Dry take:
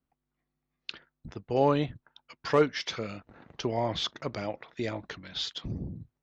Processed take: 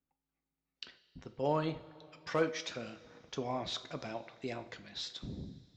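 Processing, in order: two-slope reverb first 0.45 s, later 2.9 s, from -15 dB, DRR 8.5 dB; tape speed +8%; trim -7.5 dB

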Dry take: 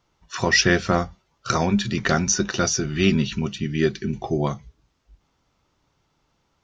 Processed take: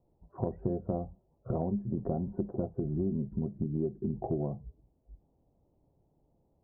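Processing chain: steep low-pass 740 Hz 36 dB/octave; compression 6:1, threshold -29 dBFS, peak gain reduction 14 dB

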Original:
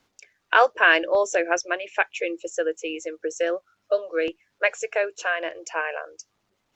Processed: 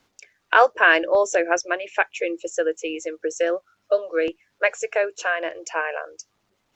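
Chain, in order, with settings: dynamic bell 3.3 kHz, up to -4 dB, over -35 dBFS, Q 1; trim +2.5 dB

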